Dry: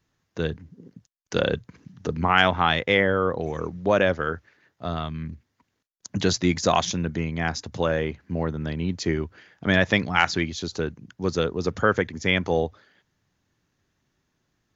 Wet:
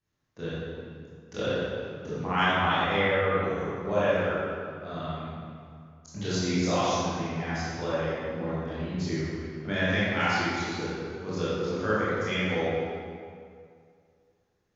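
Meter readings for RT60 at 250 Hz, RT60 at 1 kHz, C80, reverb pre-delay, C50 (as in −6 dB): 2.2 s, 2.3 s, −2.5 dB, 19 ms, −5.5 dB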